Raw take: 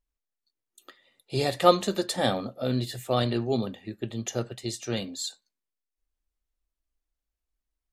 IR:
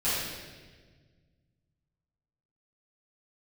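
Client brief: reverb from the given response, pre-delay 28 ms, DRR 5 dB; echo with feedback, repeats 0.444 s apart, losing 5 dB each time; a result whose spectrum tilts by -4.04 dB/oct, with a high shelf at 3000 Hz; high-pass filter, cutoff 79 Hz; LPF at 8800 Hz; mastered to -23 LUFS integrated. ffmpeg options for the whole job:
-filter_complex "[0:a]highpass=79,lowpass=8.8k,highshelf=f=3k:g=7,aecho=1:1:444|888|1332|1776|2220|2664|3108:0.562|0.315|0.176|0.0988|0.0553|0.031|0.0173,asplit=2[a][b];[1:a]atrim=start_sample=2205,adelay=28[c];[b][c]afir=irnorm=-1:irlink=0,volume=-15.5dB[d];[a][d]amix=inputs=2:normalize=0,volume=1.5dB"

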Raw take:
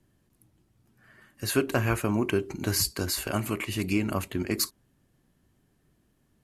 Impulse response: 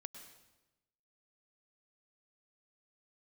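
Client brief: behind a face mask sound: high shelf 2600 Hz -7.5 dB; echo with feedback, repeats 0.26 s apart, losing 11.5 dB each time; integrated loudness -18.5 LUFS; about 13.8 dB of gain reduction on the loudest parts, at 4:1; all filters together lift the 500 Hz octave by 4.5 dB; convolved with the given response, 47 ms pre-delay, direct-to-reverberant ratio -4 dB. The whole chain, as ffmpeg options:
-filter_complex "[0:a]equalizer=f=500:t=o:g=6.5,acompressor=threshold=-34dB:ratio=4,aecho=1:1:260|520|780:0.266|0.0718|0.0194,asplit=2[a][b];[1:a]atrim=start_sample=2205,adelay=47[c];[b][c]afir=irnorm=-1:irlink=0,volume=9dB[d];[a][d]amix=inputs=2:normalize=0,highshelf=f=2.6k:g=-7.5,volume=14dB"

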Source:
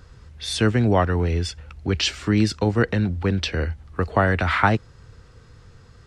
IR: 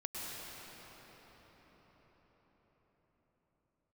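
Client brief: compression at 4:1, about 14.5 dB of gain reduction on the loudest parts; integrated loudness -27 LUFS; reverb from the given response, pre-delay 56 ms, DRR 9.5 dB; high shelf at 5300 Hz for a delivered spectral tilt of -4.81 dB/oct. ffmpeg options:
-filter_complex "[0:a]highshelf=f=5.3k:g=3.5,acompressor=threshold=-31dB:ratio=4,asplit=2[a][b];[1:a]atrim=start_sample=2205,adelay=56[c];[b][c]afir=irnorm=-1:irlink=0,volume=-11.5dB[d];[a][d]amix=inputs=2:normalize=0,volume=6.5dB"

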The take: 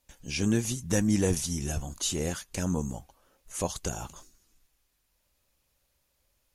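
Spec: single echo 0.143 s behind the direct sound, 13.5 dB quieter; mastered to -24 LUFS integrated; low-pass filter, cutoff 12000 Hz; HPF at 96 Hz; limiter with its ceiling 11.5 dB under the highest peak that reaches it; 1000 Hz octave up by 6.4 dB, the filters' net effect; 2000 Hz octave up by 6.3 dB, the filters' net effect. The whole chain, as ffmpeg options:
-af "highpass=96,lowpass=12k,equalizer=f=1k:t=o:g=7,equalizer=f=2k:t=o:g=6,alimiter=limit=-21.5dB:level=0:latency=1,aecho=1:1:143:0.211,volume=9dB"

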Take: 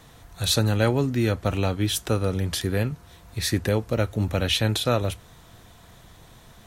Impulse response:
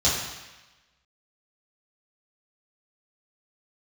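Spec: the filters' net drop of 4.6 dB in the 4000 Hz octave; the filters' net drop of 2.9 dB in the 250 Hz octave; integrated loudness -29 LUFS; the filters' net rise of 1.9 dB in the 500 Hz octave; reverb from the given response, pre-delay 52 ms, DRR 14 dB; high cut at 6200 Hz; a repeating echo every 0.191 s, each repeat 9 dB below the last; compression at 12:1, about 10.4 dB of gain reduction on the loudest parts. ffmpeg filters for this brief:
-filter_complex "[0:a]lowpass=6.2k,equalizer=f=250:t=o:g=-5,equalizer=f=500:t=o:g=3.5,equalizer=f=4k:t=o:g=-5,acompressor=threshold=-27dB:ratio=12,aecho=1:1:191|382|573|764:0.355|0.124|0.0435|0.0152,asplit=2[a][b];[1:a]atrim=start_sample=2205,adelay=52[c];[b][c]afir=irnorm=-1:irlink=0,volume=-28.5dB[d];[a][d]amix=inputs=2:normalize=0,volume=3dB"

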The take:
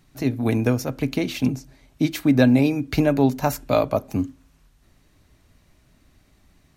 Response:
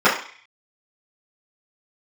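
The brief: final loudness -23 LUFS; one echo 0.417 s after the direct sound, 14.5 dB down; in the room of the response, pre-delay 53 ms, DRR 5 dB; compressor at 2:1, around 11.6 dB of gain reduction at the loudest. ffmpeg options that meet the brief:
-filter_complex "[0:a]acompressor=threshold=-34dB:ratio=2,aecho=1:1:417:0.188,asplit=2[a][b];[1:a]atrim=start_sample=2205,adelay=53[c];[b][c]afir=irnorm=-1:irlink=0,volume=-29.5dB[d];[a][d]amix=inputs=2:normalize=0,volume=8dB"

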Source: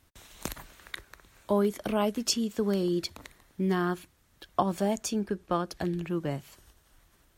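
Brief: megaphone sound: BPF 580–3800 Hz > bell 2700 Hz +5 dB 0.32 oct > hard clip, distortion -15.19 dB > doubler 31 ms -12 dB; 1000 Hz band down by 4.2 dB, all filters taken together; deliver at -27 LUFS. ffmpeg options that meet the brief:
-filter_complex "[0:a]highpass=580,lowpass=3.8k,equalizer=f=1k:t=o:g=-4.5,equalizer=f=2.7k:t=o:w=0.32:g=5,asoftclip=type=hard:threshold=-25.5dB,asplit=2[a][b];[b]adelay=31,volume=-12dB[c];[a][c]amix=inputs=2:normalize=0,volume=11.5dB"

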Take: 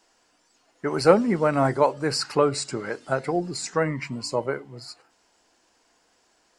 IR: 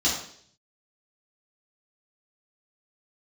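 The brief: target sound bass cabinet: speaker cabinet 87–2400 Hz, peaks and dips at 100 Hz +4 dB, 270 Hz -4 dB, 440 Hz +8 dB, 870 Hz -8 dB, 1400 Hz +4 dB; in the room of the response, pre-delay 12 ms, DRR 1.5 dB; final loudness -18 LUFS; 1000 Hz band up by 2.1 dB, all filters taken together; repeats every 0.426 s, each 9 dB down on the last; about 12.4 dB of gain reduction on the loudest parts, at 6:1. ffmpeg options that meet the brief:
-filter_complex "[0:a]equalizer=f=1k:t=o:g=4.5,acompressor=threshold=-22dB:ratio=6,aecho=1:1:426|852|1278|1704:0.355|0.124|0.0435|0.0152,asplit=2[a][b];[1:a]atrim=start_sample=2205,adelay=12[c];[b][c]afir=irnorm=-1:irlink=0,volume=-13.5dB[d];[a][d]amix=inputs=2:normalize=0,highpass=f=87:w=0.5412,highpass=f=87:w=1.3066,equalizer=f=100:t=q:w=4:g=4,equalizer=f=270:t=q:w=4:g=-4,equalizer=f=440:t=q:w=4:g=8,equalizer=f=870:t=q:w=4:g=-8,equalizer=f=1.4k:t=q:w=4:g=4,lowpass=f=2.4k:w=0.5412,lowpass=f=2.4k:w=1.3066,volume=6dB"

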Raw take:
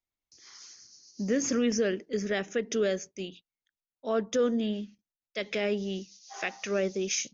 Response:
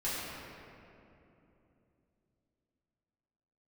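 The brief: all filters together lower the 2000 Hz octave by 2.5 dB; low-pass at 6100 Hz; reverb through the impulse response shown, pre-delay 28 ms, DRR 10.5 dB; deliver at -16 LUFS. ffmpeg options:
-filter_complex "[0:a]lowpass=6.1k,equalizer=f=2k:t=o:g=-3,asplit=2[a][b];[1:a]atrim=start_sample=2205,adelay=28[c];[b][c]afir=irnorm=-1:irlink=0,volume=-17dB[d];[a][d]amix=inputs=2:normalize=0,volume=15dB"

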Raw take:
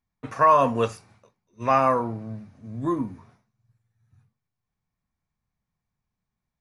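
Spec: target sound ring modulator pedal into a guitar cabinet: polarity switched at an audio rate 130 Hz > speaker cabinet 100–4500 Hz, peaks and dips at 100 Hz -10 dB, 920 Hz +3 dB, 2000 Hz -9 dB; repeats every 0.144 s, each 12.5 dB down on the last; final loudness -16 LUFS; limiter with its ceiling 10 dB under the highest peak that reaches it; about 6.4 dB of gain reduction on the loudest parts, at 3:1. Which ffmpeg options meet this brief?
-af "acompressor=threshold=-21dB:ratio=3,alimiter=limit=-21.5dB:level=0:latency=1,aecho=1:1:144|288|432:0.237|0.0569|0.0137,aeval=exprs='val(0)*sgn(sin(2*PI*130*n/s))':c=same,highpass=100,equalizer=f=100:t=q:w=4:g=-10,equalizer=f=920:t=q:w=4:g=3,equalizer=f=2k:t=q:w=4:g=-9,lowpass=f=4.5k:w=0.5412,lowpass=f=4.5k:w=1.3066,volume=16.5dB"

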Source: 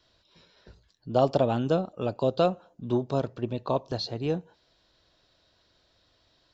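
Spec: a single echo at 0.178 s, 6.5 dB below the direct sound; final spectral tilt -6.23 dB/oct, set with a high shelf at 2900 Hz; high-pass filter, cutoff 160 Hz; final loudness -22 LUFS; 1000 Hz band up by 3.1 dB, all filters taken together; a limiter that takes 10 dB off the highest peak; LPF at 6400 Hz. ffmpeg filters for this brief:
-af "highpass=160,lowpass=6.4k,equalizer=f=1k:t=o:g=5.5,highshelf=f=2.9k:g=-7.5,alimiter=limit=-19dB:level=0:latency=1,aecho=1:1:178:0.473,volume=9dB"

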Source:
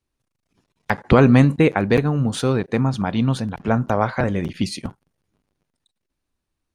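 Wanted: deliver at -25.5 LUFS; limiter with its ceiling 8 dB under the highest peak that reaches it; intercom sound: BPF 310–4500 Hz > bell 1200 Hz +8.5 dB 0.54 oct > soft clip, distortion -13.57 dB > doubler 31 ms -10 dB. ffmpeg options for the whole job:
-filter_complex "[0:a]alimiter=limit=-9dB:level=0:latency=1,highpass=310,lowpass=4.5k,equalizer=f=1.2k:t=o:w=0.54:g=8.5,asoftclip=threshold=-14.5dB,asplit=2[a][b];[b]adelay=31,volume=-10dB[c];[a][c]amix=inputs=2:normalize=0,volume=0.5dB"

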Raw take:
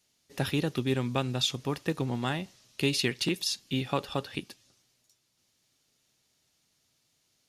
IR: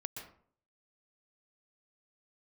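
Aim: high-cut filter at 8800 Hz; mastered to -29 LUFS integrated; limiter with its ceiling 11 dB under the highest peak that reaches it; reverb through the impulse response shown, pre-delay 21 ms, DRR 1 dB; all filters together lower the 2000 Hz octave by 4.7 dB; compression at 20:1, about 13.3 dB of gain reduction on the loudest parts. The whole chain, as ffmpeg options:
-filter_complex "[0:a]lowpass=8.8k,equalizer=f=2k:t=o:g=-6.5,acompressor=threshold=-37dB:ratio=20,alimiter=level_in=11dB:limit=-24dB:level=0:latency=1,volume=-11dB,asplit=2[a][b];[1:a]atrim=start_sample=2205,adelay=21[c];[b][c]afir=irnorm=-1:irlink=0,volume=0.5dB[d];[a][d]amix=inputs=2:normalize=0,volume=14.5dB"

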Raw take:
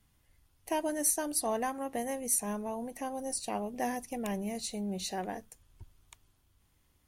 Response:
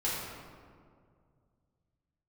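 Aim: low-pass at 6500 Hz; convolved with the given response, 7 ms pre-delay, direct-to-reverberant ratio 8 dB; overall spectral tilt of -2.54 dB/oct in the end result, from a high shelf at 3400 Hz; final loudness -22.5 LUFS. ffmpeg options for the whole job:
-filter_complex "[0:a]lowpass=6.5k,highshelf=f=3.4k:g=8.5,asplit=2[a][b];[1:a]atrim=start_sample=2205,adelay=7[c];[b][c]afir=irnorm=-1:irlink=0,volume=-15dB[d];[a][d]amix=inputs=2:normalize=0,volume=10.5dB"

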